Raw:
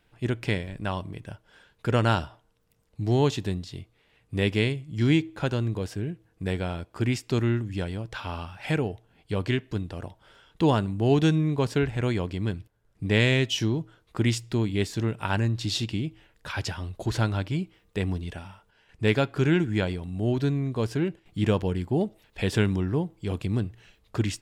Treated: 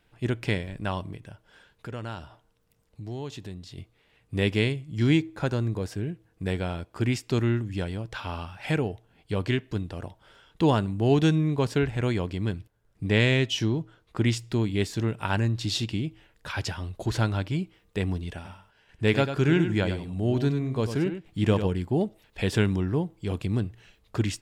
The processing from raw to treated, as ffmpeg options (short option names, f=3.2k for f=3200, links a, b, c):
-filter_complex "[0:a]asettb=1/sr,asplit=3[a][b][c];[a]atrim=end=1.164[d];[b]atrim=start=1.16:end=3.78,asetpts=PTS-STARTPTS,afade=t=in:d=0.004:c=qsin,afade=t=out:st=2.616:d=0.004:c=qsin,acompressor=threshold=-43dB:ratio=2:attack=3.2:release=140:knee=1:detection=peak[e];[c]atrim=start=3.776[f];[d][e]acrossfade=d=0.004:c1=hsin:c2=qsin[g];[g][f]acrossfade=d=0.004:c1=qsin:c2=hsin,asettb=1/sr,asplit=3[h][i][j];[h]atrim=end=5.174[k];[i]atrim=start=5.17:end=5.92,asetpts=PTS-STARTPTS,afade=t=in:d=0.004:c=qsin,afade=t=out:st=0.746:d=0.004:c=qsin,equalizer=f=3k:t=o:w=0.42:g=-6.5[l];[j]atrim=start=5.916[m];[k][l]acrossfade=d=0.004:c1=hsin:c2=qsin[n];[n][m]acrossfade=d=0.004:c1=qsin:c2=hsin,asettb=1/sr,asplit=3[o][p][q];[o]atrim=end=13.114[r];[p]atrim=start=13.11:end=14.39,asetpts=PTS-STARTPTS,afade=t=in:d=0.004:c=qsin,afade=t=out:st=1.276:d=0.004:c=qsin,highshelf=f=8k:g=-6[s];[q]atrim=start=14.386[t];[r][s]acrossfade=d=0.004:c1=hsin:c2=qsin[u];[u][t]acrossfade=d=0.004:c1=qsin:c2=hsin,asettb=1/sr,asplit=3[v][w][x];[v]atrim=end=18.354[y];[w]atrim=start=18.35:end=21.68,asetpts=PTS-STARTPTS,afade=t=in:d=0.004:c=qsin,afade=t=out:st=3.326:d=0.004:c=qsin,aecho=1:1:97:0.355,atrim=end_sample=146853[z];[x]atrim=start=21.676[aa];[y][z]acrossfade=d=0.004:c1=hsin:c2=qsin[ab];[ab][aa]acrossfade=d=0.004:c1=qsin:c2=hsin"